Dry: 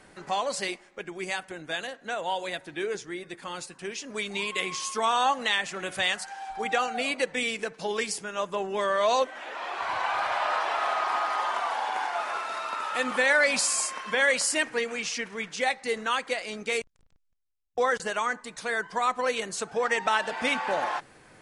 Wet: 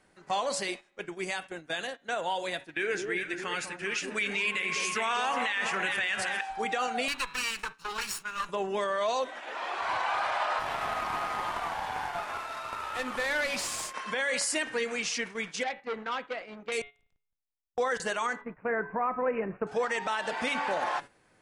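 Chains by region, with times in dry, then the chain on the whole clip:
2.7–6.41 band shelf 2000 Hz +9.5 dB 1.2 oct + echo with dull and thin repeats by turns 0.202 s, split 950 Hz, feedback 62%, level -5 dB
7.08–8.49 minimum comb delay 0.73 ms + resonant low shelf 740 Hz -7.5 dB, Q 1.5
10.59–13.94 CVSD 64 kbps + high shelf 7000 Hz -5.5 dB + tube stage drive 20 dB, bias 0.75
15.63–16.72 LPF 2100 Hz + dynamic EQ 1300 Hz, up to -4 dB, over -35 dBFS, Q 0.75 + core saturation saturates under 1900 Hz
18.41–19.67 LPF 1500 Hz + low shelf 400 Hz +7.5 dB + careless resampling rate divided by 8×, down none, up filtered
whole clip: de-hum 141.1 Hz, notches 29; gate -39 dBFS, range -11 dB; limiter -20.5 dBFS

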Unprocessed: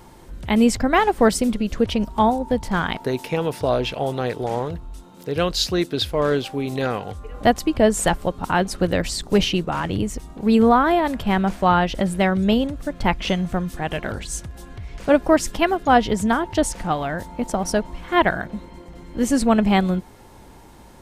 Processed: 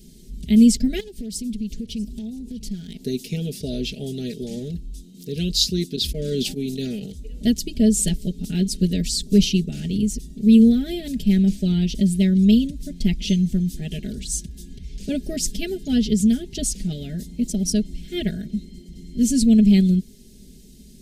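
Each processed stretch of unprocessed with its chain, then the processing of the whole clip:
1–3.03 compressor, threshold -28 dBFS + overloaded stage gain 24.5 dB + echo 0.644 s -20 dB
5.96–7.06 gate -27 dBFS, range -20 dB + sustainer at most 42 dB/s
whole clip: Chebyshev band-stop 230–4600 Hz, order 2; tone controls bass -4 dB, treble -2 dB; comb 4.8 ms, depth 86%; gain +3 dB

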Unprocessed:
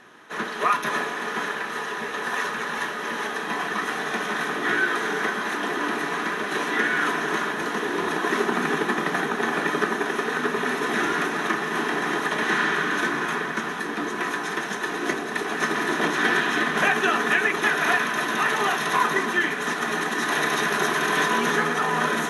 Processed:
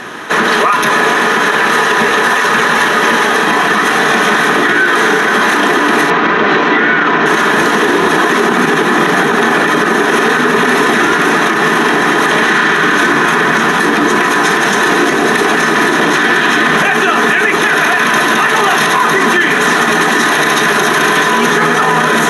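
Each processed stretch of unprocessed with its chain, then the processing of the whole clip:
6.1–7.26 air absorption 200 m + notch 1700 Hz, Q 24
whole clip: compressor, threshold -24 dBFS; maximiser +25 dB; gain -1 dB

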